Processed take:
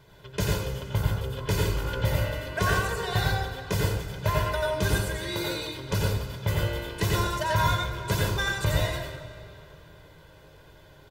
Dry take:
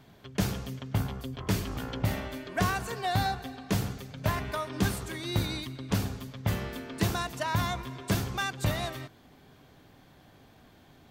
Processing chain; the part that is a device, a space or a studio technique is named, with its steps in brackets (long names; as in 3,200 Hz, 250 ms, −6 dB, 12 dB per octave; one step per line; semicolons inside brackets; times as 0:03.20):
0:05.16–0:05.75: high-pass filter 230 Hz 12 dB per octave
microphone above a desk (comb filter 2 ms, depth 82%; convolution reverb RT60 0.35 s, pre-delay 84 ms, DRR −1.5 dB)
comb and all-pass reverb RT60 3.2 s, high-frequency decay 0.85×, pre-delay 35 ms, DRR 11.5 dB
level −1 dB